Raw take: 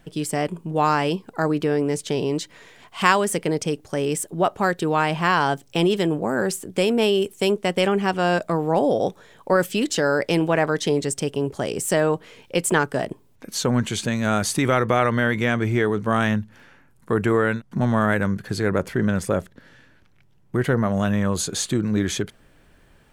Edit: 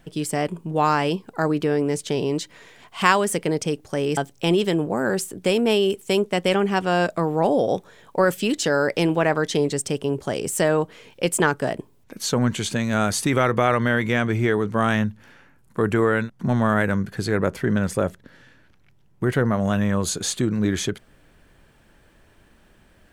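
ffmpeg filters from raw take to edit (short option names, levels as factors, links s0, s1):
-filter_complex "[0:a]asplit=2[s0][s1];[s0]atrim=end=4.172[s2];[s1]atrim=start=5.488[s3];[s2][s3]acrossfade=d=0.004:c1=hsin:c2=hsin"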